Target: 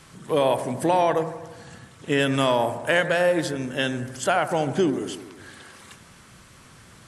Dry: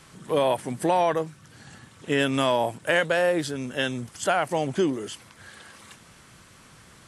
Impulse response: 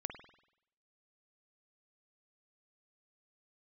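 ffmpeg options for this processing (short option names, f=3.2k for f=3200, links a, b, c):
-filter_complex "[0:a]asplit=2[a][b];[1:a]atrim=start_sample=2205,asetrate=26460,aresample=44100,lowshelf=f=170:g=4.5[c];[b][c]afir=irnorm=-1:irlink=0,volume=-1.5dB[d];[a][d]amix=inputs=2:normalize=0,volume=-4dB"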